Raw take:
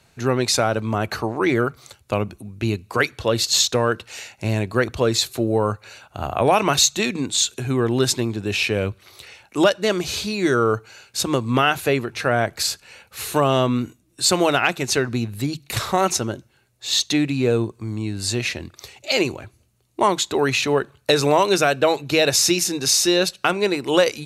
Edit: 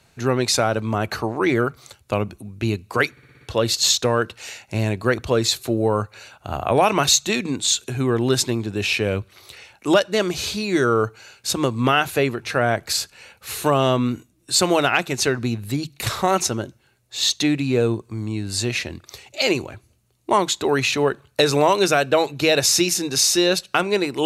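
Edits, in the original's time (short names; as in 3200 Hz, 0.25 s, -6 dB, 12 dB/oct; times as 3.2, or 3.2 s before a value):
3.11 stutter 0.06 s, 6 plays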